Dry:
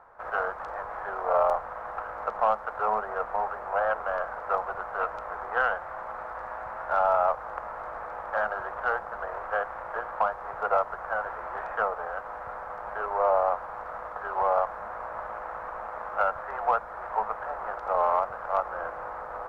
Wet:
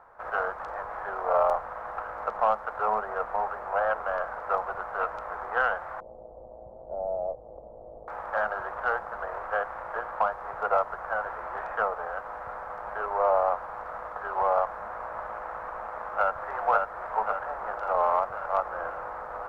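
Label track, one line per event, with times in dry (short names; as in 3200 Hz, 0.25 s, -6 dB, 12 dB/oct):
6.000000	8.080000	steep low-pass 610 Hz
15.870000	16.310000	echo throw 0.54 s, feedback 65%, level -3 dB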